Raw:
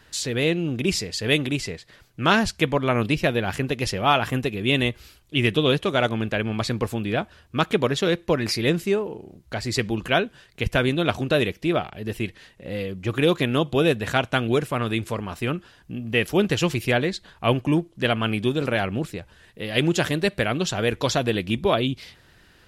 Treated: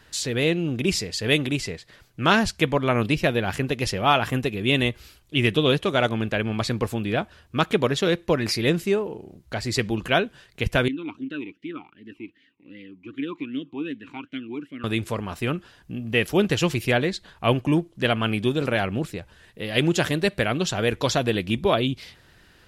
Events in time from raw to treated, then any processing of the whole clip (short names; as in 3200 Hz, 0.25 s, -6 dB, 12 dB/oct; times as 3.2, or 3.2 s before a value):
10.88–14.84 vowel sweep i-u 2.6 Hz